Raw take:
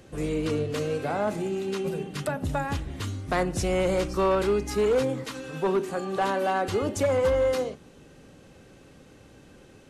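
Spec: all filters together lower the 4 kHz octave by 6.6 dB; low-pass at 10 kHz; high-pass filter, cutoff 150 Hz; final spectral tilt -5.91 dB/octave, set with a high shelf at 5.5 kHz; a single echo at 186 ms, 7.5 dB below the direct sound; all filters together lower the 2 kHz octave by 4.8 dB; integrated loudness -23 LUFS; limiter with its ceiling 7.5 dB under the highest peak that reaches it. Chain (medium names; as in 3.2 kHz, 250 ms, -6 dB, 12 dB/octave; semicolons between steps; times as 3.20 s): high-pass 150 Hz; low-pass 10 kHz; peaking EQ 2 kHz -4.5 dB; peaking EQ 4 kHz -3.5 dB; treble shelf 5.5 kHz -9 dB; peak limiter -23 dBFS; delay 186 ms -7.5 dB; trim +8 dB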